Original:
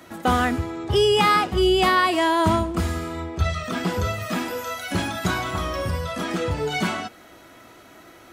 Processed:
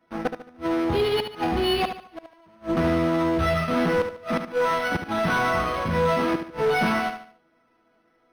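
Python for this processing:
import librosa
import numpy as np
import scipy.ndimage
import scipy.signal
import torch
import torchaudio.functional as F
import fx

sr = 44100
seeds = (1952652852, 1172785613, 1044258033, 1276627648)

p1 = fx.high_shelf(x, sr, hz=4300.0, db=-10.5)
p2 = fx.resonator_bank(p1, sr, root=52, chord='sus4', decay_s=0.22)
p3 = fx.fuzz(p2, sr, gain_db=41.0, gate_db=-49.0)
p4 = p2 + (p3 * 10.0 ** (-4.0 / 20.0))
p5 = fx.gate_flip(p4, sr, shuts_db=-14.0, range_db=-34)
p6 = p5 + fx.echo_feedback(p5, sr, ms=73, feedback_pct=36, wet_db=-8.5, dry=0)
p7 = np.interp(np.arange(len(p6)), np.arange(len(p6))[::6], p6[::6])
y = p7 * 10.0 ** (-3.5 / 20.0)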